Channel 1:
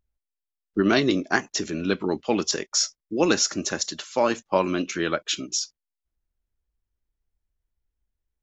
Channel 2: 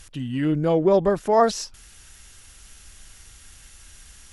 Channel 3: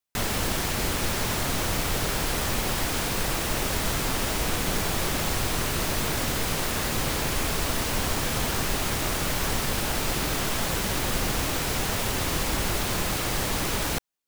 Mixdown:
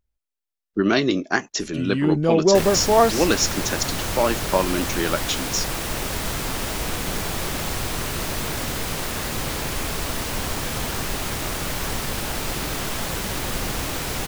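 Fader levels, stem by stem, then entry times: +1.0 dB, +1.5 dB, 0.0 dB; 0.00 s, 1.60 s, 2.40 s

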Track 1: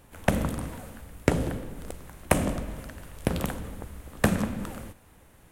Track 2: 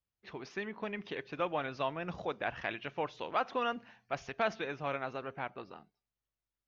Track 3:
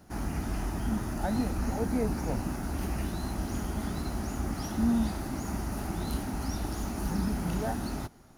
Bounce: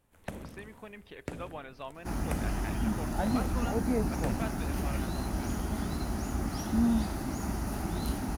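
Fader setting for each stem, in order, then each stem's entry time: -16.5 dB, -8.0 dB, 0.0 dB; 0.00 s, 0.00 s, 1.95 s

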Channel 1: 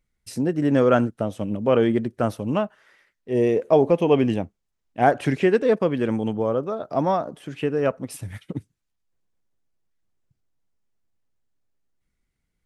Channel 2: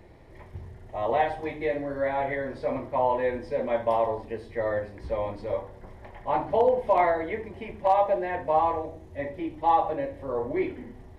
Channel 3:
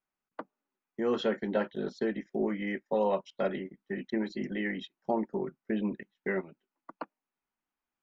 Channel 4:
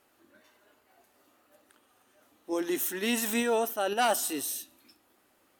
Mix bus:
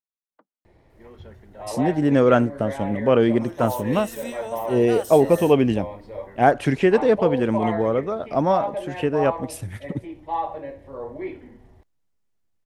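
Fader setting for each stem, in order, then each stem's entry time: +1.5 dB, -4.5 dB, -18.5 dB, -7.5 dB; 1.40 s, 0.65 s, 0.00 s, 0.90 s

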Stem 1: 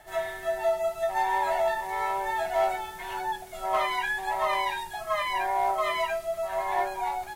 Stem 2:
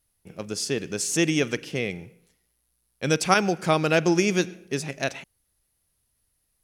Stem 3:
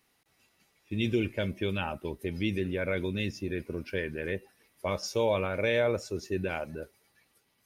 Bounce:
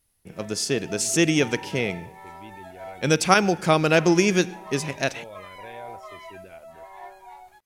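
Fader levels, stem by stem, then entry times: -14.5 dB, +2.5 dB, -15.5 dB; 0.25 s, 0.00 s, 0.00 s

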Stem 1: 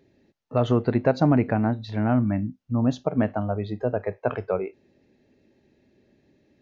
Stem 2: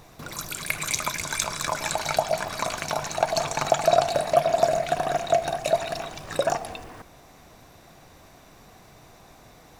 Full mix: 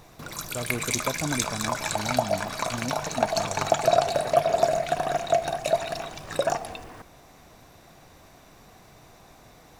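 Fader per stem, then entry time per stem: -11.5 dB, -1.0 dB; 0.00 s, 0.00 s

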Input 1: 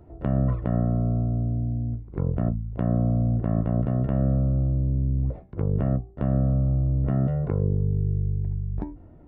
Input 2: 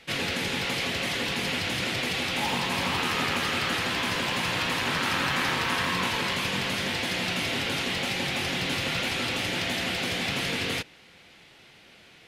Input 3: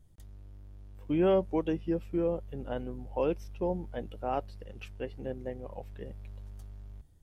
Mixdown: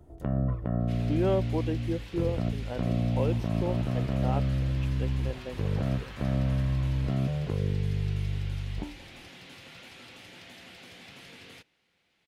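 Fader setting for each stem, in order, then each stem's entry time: -5.0 dB, -20.0 dB, -1.5 dB; 0.00 s, 0.80 s, 0.00 s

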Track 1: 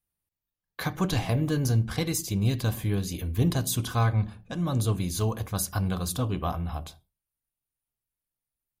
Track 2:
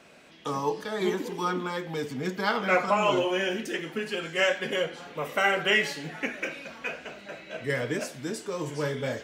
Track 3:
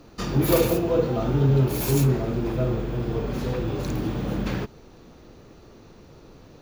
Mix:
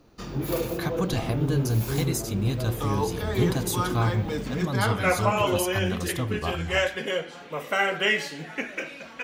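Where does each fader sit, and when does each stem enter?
-1.0 dB, 0.0 dB, -8.0 dB; 0.00 s, 2.35 s, 0.00 s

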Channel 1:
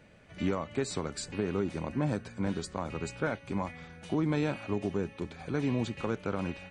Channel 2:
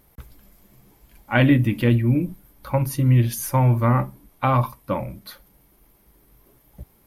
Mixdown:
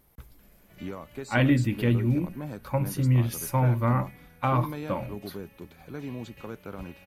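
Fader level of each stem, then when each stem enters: -6.5 dB, -5.5 dB; 0.40 s, 0.00 s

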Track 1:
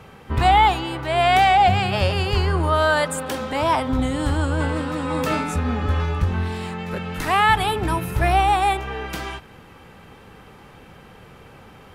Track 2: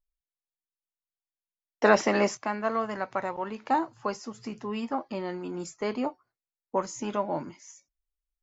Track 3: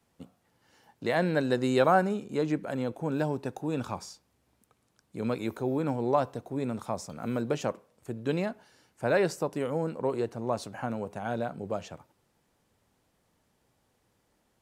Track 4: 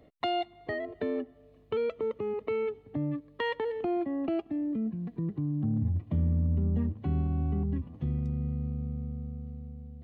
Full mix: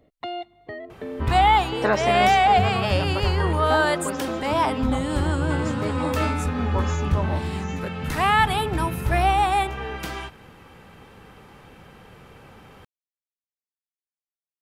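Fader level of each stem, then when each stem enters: -2.0 dB, -1.5 dB, mute, -2.0 dB; 0.90 s, 0.00 s, mute, 0.00 s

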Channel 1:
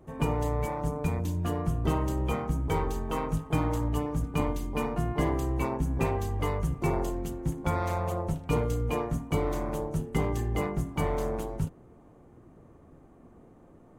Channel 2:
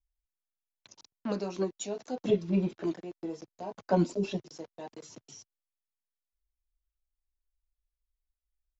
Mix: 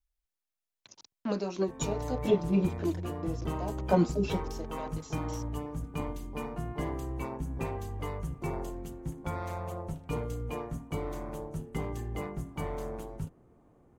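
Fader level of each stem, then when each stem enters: -7.0 dB, +1.0 dB; 1.60 s, 0.00 s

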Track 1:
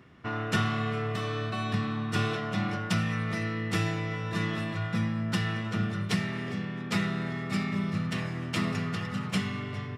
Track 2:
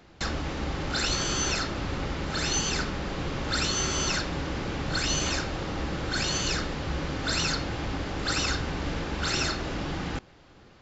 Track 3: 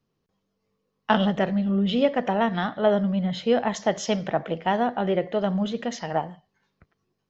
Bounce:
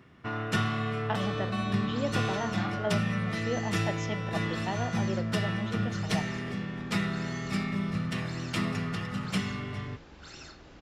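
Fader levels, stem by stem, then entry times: -1.0 dB, -19.5 dB, -11.5 dB; 0.00 s, 1.00 s, 0.00 s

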